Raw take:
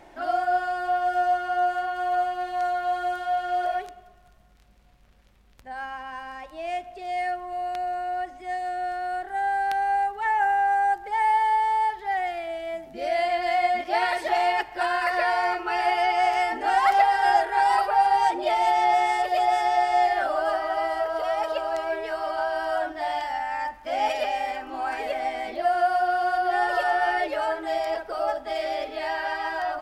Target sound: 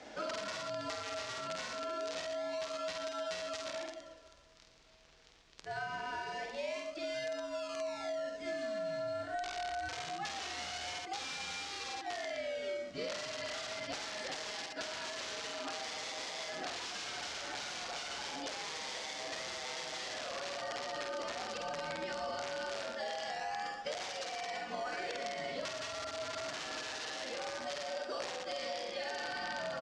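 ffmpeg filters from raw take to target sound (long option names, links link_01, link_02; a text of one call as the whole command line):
ffmpeg -i in.wav -filter_complex "[0:a]afreqshift=-79,highshelf=frequency=2700:gain=6.5,bandreject=frequency=60:width_type=h:width=6,bandreject=frequency=120:width_type=h:width=6,bandreject=frequency=180:width_type=h:width=6,bandreject=frequency=240:width_type=h:width=6,bandreject=frequency=300:width_type=h:width=6,asplit=2[link_01][link_02];[link_02]acrusher=samples=40:mix=1:aa=0.000001:lfo=1:lforange=40:lforate=0.24,volume=-9dB[link_03];[link_01][link_03]amix=inputs=2:normalize=0,aeval=exprs='(mod(7.08*val(0)+1,2)-1)/7.08':channel_layout=same,highpass=frequency=87:poles=1,aecho=1:1:49.56|116.6:0.631|0.316,alimiter=limit=-20dB:level=0:latency=1:release=16,bass=frequency=250:gain=-6,treble=frequency=4000:gain=8,acompressor=threshold=-34dB:ratio=5,lowpass=frequency=6000:width=0.5412,lowpass=frequency=6000:width=1.3066,volume=-2.5dB" out.wav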